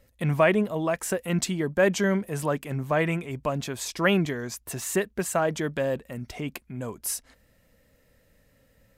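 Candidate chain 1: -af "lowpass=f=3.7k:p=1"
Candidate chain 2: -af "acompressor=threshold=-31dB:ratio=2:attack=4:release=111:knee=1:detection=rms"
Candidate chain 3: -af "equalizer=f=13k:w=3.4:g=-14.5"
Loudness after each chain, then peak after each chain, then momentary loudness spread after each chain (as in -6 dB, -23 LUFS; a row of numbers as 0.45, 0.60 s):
-27.5, -33.0, -27.0 LUFS; -10.0, -17.0, -10.0 dBFS; 14, 7, 13 LU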